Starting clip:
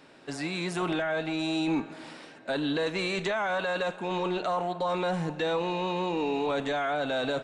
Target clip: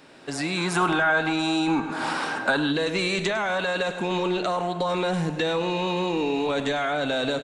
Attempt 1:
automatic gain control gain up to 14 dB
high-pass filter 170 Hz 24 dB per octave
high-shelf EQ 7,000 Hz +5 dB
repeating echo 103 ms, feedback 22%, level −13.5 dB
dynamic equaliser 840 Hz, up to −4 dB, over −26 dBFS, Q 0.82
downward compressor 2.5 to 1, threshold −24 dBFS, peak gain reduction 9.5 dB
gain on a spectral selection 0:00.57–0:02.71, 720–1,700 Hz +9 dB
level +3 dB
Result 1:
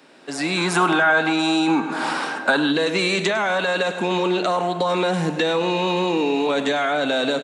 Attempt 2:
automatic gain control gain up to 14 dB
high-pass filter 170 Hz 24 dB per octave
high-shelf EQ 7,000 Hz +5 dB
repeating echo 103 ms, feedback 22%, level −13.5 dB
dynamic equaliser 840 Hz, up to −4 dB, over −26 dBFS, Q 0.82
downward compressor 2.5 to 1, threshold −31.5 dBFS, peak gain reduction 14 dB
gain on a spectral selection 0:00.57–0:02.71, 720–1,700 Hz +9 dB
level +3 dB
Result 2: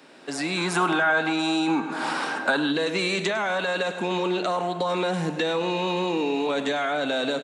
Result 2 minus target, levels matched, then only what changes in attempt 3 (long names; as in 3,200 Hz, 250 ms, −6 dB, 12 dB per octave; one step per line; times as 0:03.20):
125 Hz band −2.5 dB
remove: high-pass filter 170 Hz 24 dB per octave